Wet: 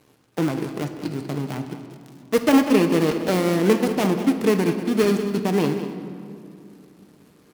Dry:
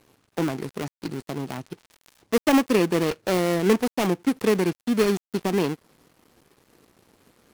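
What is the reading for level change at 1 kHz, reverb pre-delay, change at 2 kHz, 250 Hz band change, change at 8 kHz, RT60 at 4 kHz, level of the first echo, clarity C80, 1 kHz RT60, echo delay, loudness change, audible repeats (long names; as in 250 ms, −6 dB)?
+1.5 dB, 7 ms, +1.0 dB, +3.5 dB, +1.0 dB, 1.6 s, −12.0 dB, 8.0 dB, 2.3 s, 193 ms, +2.5 dB, 1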